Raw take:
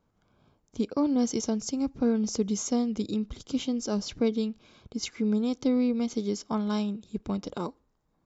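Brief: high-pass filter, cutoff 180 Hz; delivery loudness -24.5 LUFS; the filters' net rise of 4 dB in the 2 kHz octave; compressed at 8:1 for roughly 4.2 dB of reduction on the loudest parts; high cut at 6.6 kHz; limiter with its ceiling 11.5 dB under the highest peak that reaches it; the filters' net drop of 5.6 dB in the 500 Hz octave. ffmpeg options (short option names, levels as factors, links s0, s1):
-af "highpass=180,lowpass=6600,equalizer=f=500:t=o:g=-6.5,equalizer=f=2000:t=o:g=5.5,acompressor=threshold=0.0398:ratio=8,volume=5.96,alimiter=limit=0.15:level=0:latency=1"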